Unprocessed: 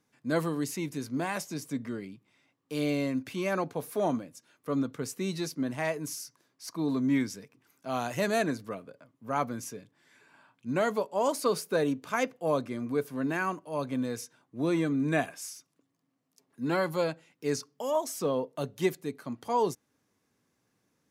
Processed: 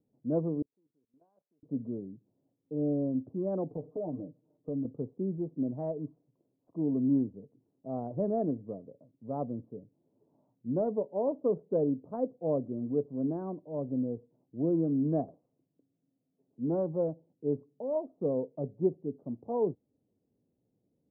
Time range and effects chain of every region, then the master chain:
0:00.62–0:01.63: resonant band-pass 1,700 Hz, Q 7 + output level in coarse steps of 16 dB
0:03.70–0:04.85: comb filter 6.6 ms, depth 96% + downward compressor 3 to 1, threshold −32 dBFS
whole clip: adaptive Wiener filter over 25 samples; inverse Chebyshev low-pass filter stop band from 2,900 Hz, stop band 70 dB

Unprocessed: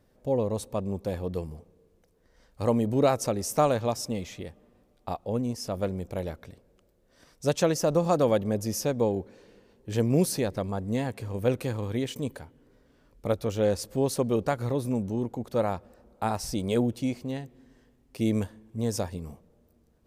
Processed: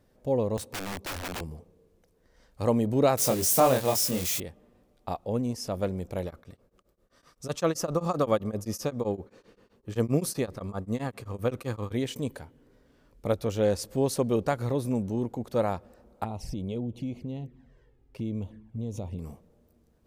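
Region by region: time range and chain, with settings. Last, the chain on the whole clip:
0:00.57–0:01.41: high-pass filter 69 Hz 24 dB per octave + wrap-around overflow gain 29.5 dB
0:03.17–0:04.40: spike at every zero crossing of −23.5 dBFS + double-tracking delay 23 ms −3 dB
0:06.25–0:11.92: parametric band 1,200 Hz +11 dB 0.24 octaves + tremolo along a rectified sine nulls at 7.7 Hz
0:16.24–0:19.19: bass and treble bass +5 dB, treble −10 dB + downward compressor 3 to 1, threshold −31 dBFS + flanger swept by the level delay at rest 2.8 ms, full sweep at −31.5 dBFS
whole clip: no processing

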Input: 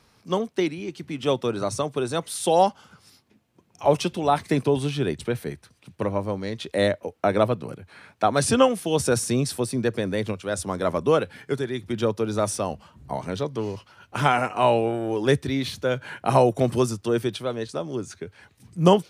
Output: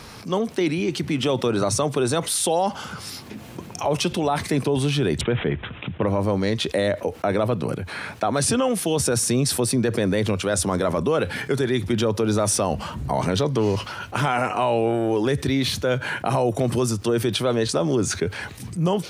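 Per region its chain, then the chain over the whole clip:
0:05.21–0:06.07: high-shelf EQ 9,400 Hz −11 dB + bad sample-rate conversion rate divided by 6×, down none, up filtered
whole clip: automatic gain control gain up to 15 dB; brickwall limiter −9.5 dBFS; envelope flattener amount 50%; level −4 dB

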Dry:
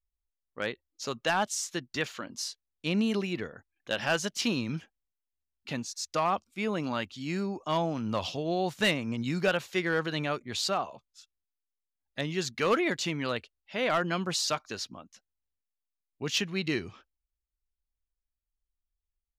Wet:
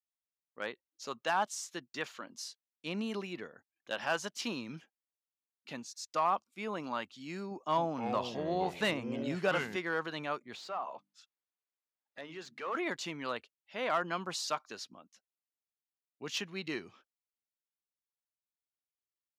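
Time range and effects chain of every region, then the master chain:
0:07.51–0:09.76: low-shelf EQ 470 Hz +4.5 dB + delay with pitch and tempo change per echo 262 ms, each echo −5 semitones, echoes 2, each echo −6 dB
0:10.54–0:12.75: mains-hum notches 50/100/150/200/250/300 Hz + downward compressor 2.5 to 1, threshold −42 dBFS + mid-hump overdrive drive 18 dB, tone 1,400 Hz, clips at −20.5 dBFS
whole clip: high-pass filter 190 Hz 12 dB per octave; dynamic equaliser 1,000 Hz, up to +8 dB, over −44 dBFS, Q 1.3; level −8 dB

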